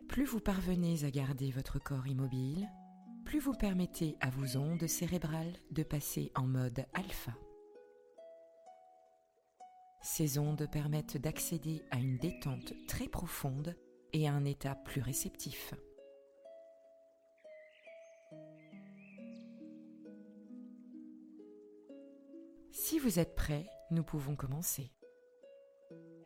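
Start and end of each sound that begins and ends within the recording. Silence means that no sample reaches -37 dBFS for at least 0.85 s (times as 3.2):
10.06–15.73
22.77–24.81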